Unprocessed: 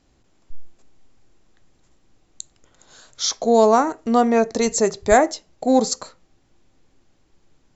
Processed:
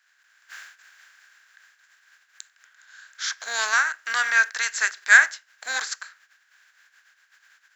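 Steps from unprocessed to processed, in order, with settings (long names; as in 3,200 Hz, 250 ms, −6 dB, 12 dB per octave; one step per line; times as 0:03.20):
compressing power law on the bin magnitudes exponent 0.56
high-pass with resonance 1,600 Hz, resonance Q 10
level −8 dB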